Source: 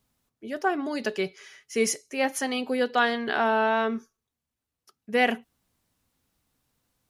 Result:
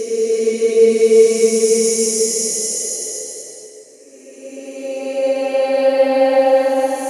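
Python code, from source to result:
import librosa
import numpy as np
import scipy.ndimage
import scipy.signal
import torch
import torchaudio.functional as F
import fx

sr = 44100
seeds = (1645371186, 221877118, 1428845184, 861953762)

y = fx.paulstretch(x, sr, seeds[0], factor=12.0, window_s=0.25, from_s=1.71)
y = fx.graphic_eq_10(y, sr, hz=(500, 1000, 2000, 8000), db=(12, 3, -6, 10))
y = F.gain(torch.from_numpy(y), 1.5).numpy()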